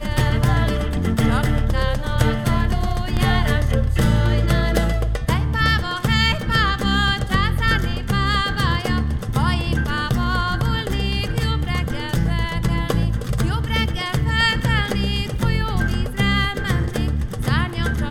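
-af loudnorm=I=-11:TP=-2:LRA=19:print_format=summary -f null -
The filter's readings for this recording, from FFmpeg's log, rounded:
Input Integrated:    -20.6 LUFS
Input True Peak:      -4.1 dBTP
Input LRA:             2.5 LU
Input Threshold:     -30.6 LUFS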